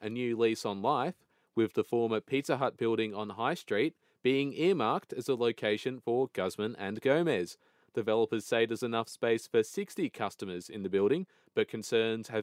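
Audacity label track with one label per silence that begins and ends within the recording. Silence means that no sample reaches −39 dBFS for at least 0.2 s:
1.110000	1.570000	silence
3.890000	4.250000	silence
7.520000	7.970000	silence
11.230000	11.570000	silence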